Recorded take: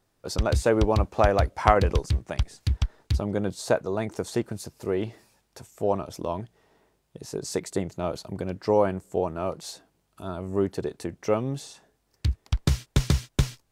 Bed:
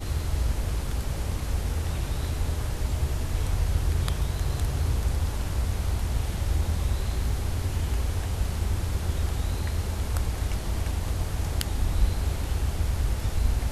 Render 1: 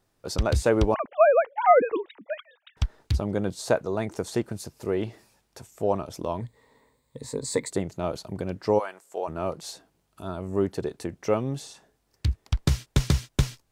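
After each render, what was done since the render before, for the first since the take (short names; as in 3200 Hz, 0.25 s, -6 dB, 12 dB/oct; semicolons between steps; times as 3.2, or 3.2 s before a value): 0.94–2.77 sine-wave speech; 6.4–7.71 ripple EQ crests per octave 1, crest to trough 13 dB; 8.78–9.27 HPF 1200 Hz -> 530 Hz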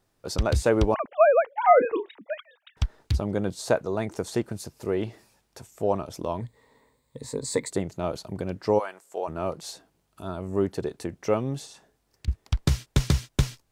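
1.6–2.16 doubler 31 ms -12.5 dB; 11.65–12.28 compressor, threshold -42 dBFS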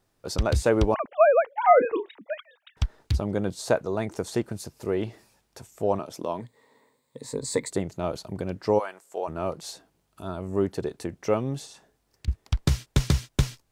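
5.99–7.29 HPF 180 Hz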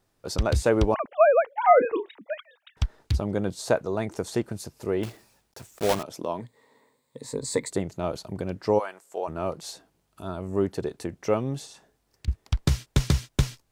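5.03–6.05 block floating point 3-bit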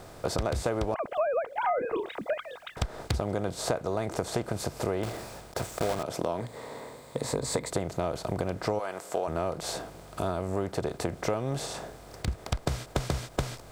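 per-bin compression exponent 0.6; compressor 6:1, threshold -26 dBFS, peak gain reduction 14.5 dB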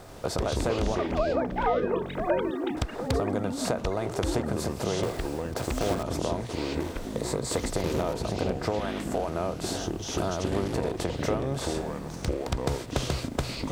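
echoes that change speed 86 ms, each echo -5 st, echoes 3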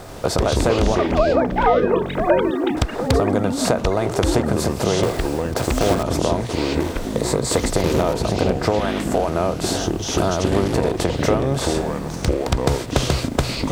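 gain +9.5 dB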